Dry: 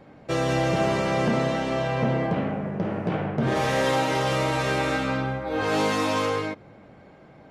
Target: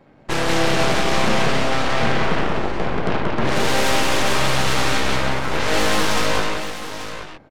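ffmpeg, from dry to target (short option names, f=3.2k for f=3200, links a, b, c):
-af "aeval=exprs='0.237*(cos(1*acos(clip(val(0)/0.237,-1,1)))-cos(1*PI/2))+0.0422*(cos(3*acos(clip(val(0)/0.237,-1,1)))-cos(3*PI/2))+0.075*(cos(5*acos(clip(val(0)/0.237,-1,1)))-cos(5*PI/2))+0.0944*(cos(7*acos(clip(val(0)/0.237,-1,1)))-cos(7*PI/2))+0.075*(cos(8*acos(clip(val(0)/0.237,-1,1)))-cos(8*PI/2))':c=same,aecho=1:1:181|837:0.631|0.335"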